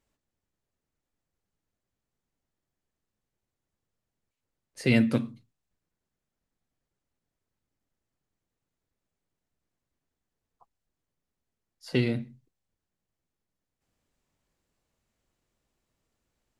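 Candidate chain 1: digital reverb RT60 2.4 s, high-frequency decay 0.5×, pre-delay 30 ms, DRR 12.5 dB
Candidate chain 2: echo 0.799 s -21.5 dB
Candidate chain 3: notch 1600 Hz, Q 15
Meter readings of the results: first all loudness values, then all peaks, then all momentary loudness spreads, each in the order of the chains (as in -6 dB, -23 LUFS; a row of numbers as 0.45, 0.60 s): -27.5, -27.5, -27.0 LUFS; -9.5, -9.5, -9.5 dBFS; 20, 22, 15 LU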